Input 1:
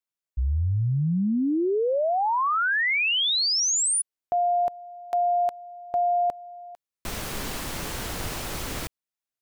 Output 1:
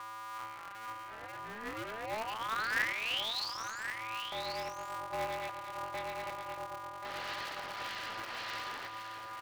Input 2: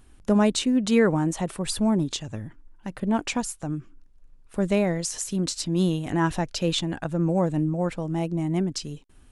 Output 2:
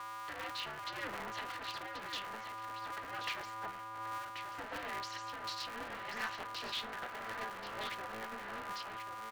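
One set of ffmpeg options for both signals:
ffmpeg -i in.wav -filter_complex "[0:a]acrossover=split=3900[link_01][link_02];[link_02]acompressor=threshold=-31dB:ratio=4:attack=1:release=60[link_03];[link_01][link_03]amix=inputs=2:normalize=0,bandreject=frequency=950:width=16,asplit=2[link_04][link_05];[link_05]acompressor=threshold=-34dB:ratio=6:release=71,volume=0.5dB[link_06];[link_04][link_06]amix=inputs=2:normalize=0,asoftclip=type=tanh:threshold=-18.5dB,acrossover=split=1200[link_07][link_08];[link_07]aeval=exprs='val(0)*(1-0.5/2+0.5/2*cos(2*PI*1.7*n/s))':channel_layout=same[link_09];[link_08]aeval=exprs='val(0)*(1-0.5/2-0.5/2*cos(2*PI*1.7*n/s))':channel_layout=same[link_10];[link_09][link_10]amix=inputs=2:normalize=0,flanger=delay=0.2:depth=8.2:regen=13:speed=0.78:shape=triangular,aeval=exprs='val(0)+0.0158*sin(2*PI*1100*n/s)':channel_layout=same,asoftclip=type=hard:threshold=-31.5dB,flanger=delay=7.9:depth=3.6:regen=69:speed=0.22:shape=sinusoidal,highpass=frequency=380:width=0.5412,highpass=frequency=380:width=1.3066,equalizer=frequency=510:width_type=q:width=4:gain=-4,equalizer=frequency=730:width_type=q:width=4:gain=4,equalizer=frequency=1300:width_type=q:width=4:gain=6,equalizer=frequency=1800:width_type=q:width=4:gain=10,equalizer=frequency=2900:width_type=q:width=4:gain=7,equalizer=frequency=4300:width_type=q:width=4:gain=6,lowpass=frequency=5100:width=0.5412,lowpass=frequency=5100:width=1.3066,asplit=2[link_11][link_12];[link_12]aecho=0:1:1083:0.398[link_13];[link_11][link_13]amix=inputs=2:normalize=0,aeval=exprs='val(0)*sgn(sin(2*PI*110*n/s))':channel_layout=same,volume=-3.5dB" out.wav

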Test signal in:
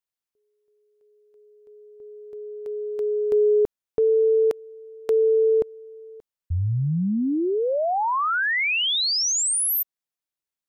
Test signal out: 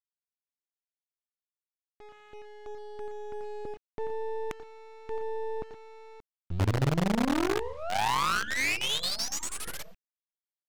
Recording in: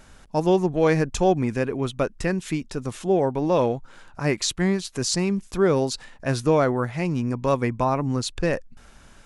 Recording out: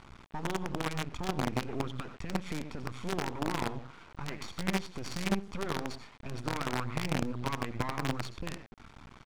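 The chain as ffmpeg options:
ffmpeg -i in.wav -af "highpass=55,aecho=1:1:0.9:0.91,acompressor=threshold=-25dB:ratio=16:attack=0.11:release=112:knee=6:detection=rms,aecho=1:1:87|111|120:0.316|0.106|0.168,acrusher=bits=5:dc=4:mix=0:aa=0.000001,adynamicsmooth=sensitivity=3:basefreq=3200" out.wav

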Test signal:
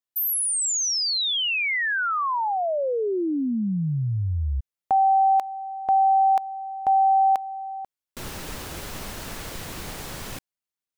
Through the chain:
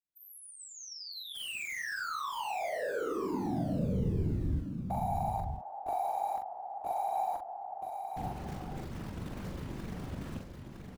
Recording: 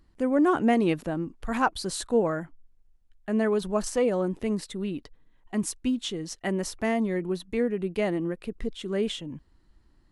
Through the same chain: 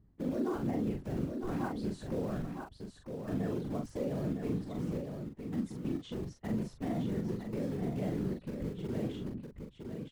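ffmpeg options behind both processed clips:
ffmpeg -i in.wav -filter_complex "[0:a]lowpass=frequency=1400:poles=1,asplit=2[link_01][link_02];[link_02]acrusher=bits=4:mix=0:aa=0.000001,volume=-5.5dB[link_03];[link_01][link_03]amix=inputs=2:normalize=0,equalizer=frequency=120:width=0.54:gain=14.5,afftfilt=real='hypot(re,im)*cos(2*PI*random(0))':imag='hypot(re,im)*sin(2*PI*random(1))':win_size=512:overlap=0.75,acompressor=threshold=-30dB:ratio=2.5:attack=0.15:release=66:detection=rms,asplit=2[link_04][link_05];[link_05]adelay=42,volume=-4.5dB[link_06];[link_04][link_06]amix=inputs=2:normalize=0,aecho=1:1:960:0.501,volume=-5.5dB" out.wav

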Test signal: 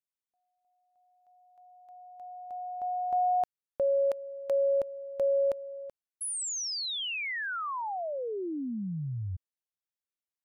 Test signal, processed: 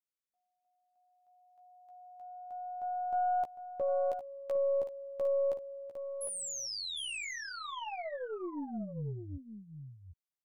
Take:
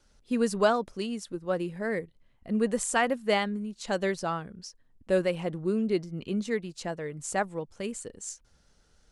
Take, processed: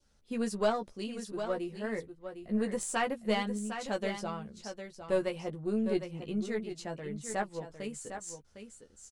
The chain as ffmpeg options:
ffmpeg -i in.wav -filter_complex "[0:a]adynamicequalizer=threshold=0.00398:dfrequency=1500:dqfactor=1.7:tfrequency=1500:tqfactor=1.7:attack=5:release=100:ratio=0.375:range=3.5:mode=cutabove:tftype=bell,asplit=2[link_01][link_02];[link_02]adelay=14,volume=-5dB[link_03];[link_01][link_03]amix=inputs=2:normalize=0,aeval=exprs='0.299*(cos(1*acos(clip(val(0)/0.299,-1,1)))-cos(1*PI/2))+0.0188*(cos(4*acos(clip(val(0)/0.299,-1,1)))-cos(4*PI/2))':channel_layout=same,aecho=1:1:756:0.355,volume=-6.5dB" out.wav

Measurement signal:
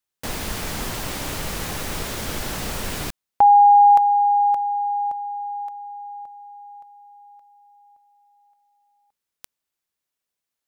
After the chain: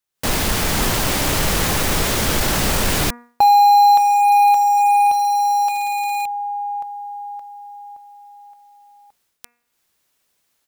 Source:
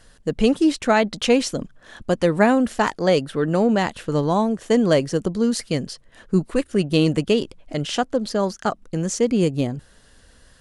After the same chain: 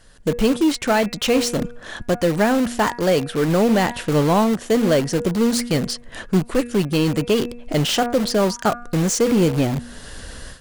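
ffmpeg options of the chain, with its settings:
ffmpeg -i in.wav -filter_complex "[0:a]bandreject=frequency=239.5:width_type=h:width=4,bandreject=frequency=479:width_type=h:width=4,bandreject=frequency=718.5:width_type=h:width=4,bandreject=frequency=958:width_type=h:width=4,bandreject=frequency=1197.5:width_type=h:width=4,bandreject=frequency=1437:width_type=h:width=4,bandreject=frequency=1676.5:width_type=h:width=4,bandreject=frequency=1916:width_type=h:width=4,bandreject=frequency=2155.5:width_type=h:width=4,bandreject=frequency=2395:width_type=h:width=4,bandreject=frequency=2634.5:width_type=h:width=4,dynaudnorm=framelen=140:gausssize=3:maxgain=16.5dB,asplit=2[link_01][link_02];[link_02]aeval=exprs='(mod(6.68*val(0)+1,2)-1)/6.68':channel_layout=same,volume=-8dB[link_03];[link_01][link_03]amix=inputs=2:normalize=0,aeval=exprs='1*(cos(1*acos(clip(val(0)/1,-1,1)))-cos(1*PI/2))+0.0708*(cos(3*acos(clip(val(0)/1,-1,1)))-cos(3*PI/2))+0.112*(cos(5*acos(clip(val(0)/1,-1,1)))-cos(5*PI/2))':channel_layout=same,volume=-5.5dB" out.wav

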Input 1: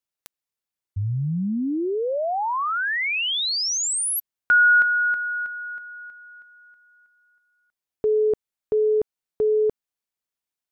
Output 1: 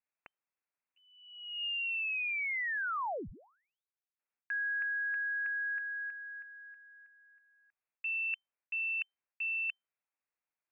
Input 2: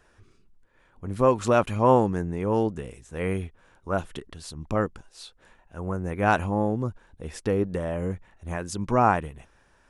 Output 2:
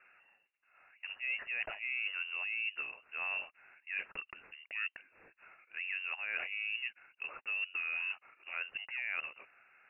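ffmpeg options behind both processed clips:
ffmpeg -i in.wav -af "highpass=frequency=360:width=0.5412,highpass=frequency=360:width=1.3066,areverse,acompressor=threshold=-33dB:ratio=16:attack=6.6:release=100:knee=1:detection=rms,areverse,lowpass=frequency=2600:width_type=q:width=0.5098,lowpass=frequency=2600:width_type=q:width=0.6013,lowpass=frequency=2600:width_type=q:width=0.9,lowpass=frequency=2600:width_type=q:width=2.563,afreqshift=-3100" out.wav

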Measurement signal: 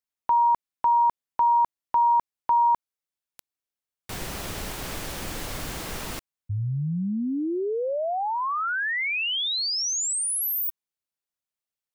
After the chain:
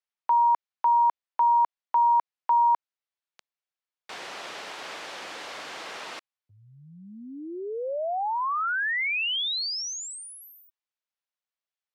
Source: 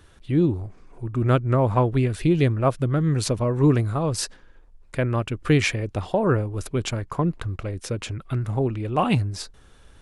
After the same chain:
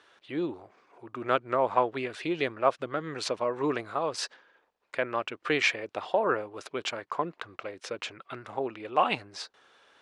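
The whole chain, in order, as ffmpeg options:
ffmpeg -i in.wav -af "highpass=560,lowpass=4500" out.wav

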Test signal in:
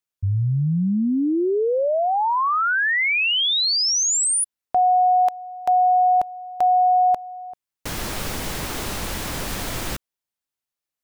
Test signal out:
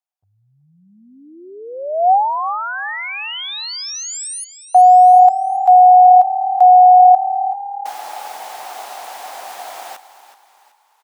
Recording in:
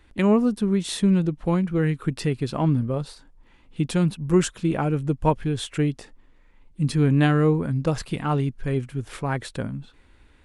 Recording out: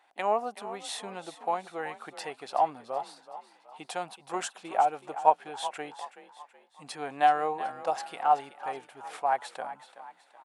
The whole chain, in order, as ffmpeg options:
ffmpeg -i in.wav -filter_complex "[0:a]highpass=frequency=750:width_type=q:width=7.6,asplit=2[link_01][link_02];[link_02]asplit=4[link_03][link_04][link_05][link_06];[link_03]adelay=376,afreqshift=36,volume=-13.5dB[link_07];[link_04]adelay=752,afreqshift=72,volume=-20.6dB[link_08];[link_05]adelay=1128,afreqshift=108,volume=-27.8dB[link_09];[link_06]adelay=1504,afreqshift=144,volume=-34.9dB[link_10];[link_07][link_08][link_09][link_10]amix=inputs=4:normalize=0[link_11];[link_01][link_11]amix=inputs=2:normalize=0,volume=-7dB" out.wav

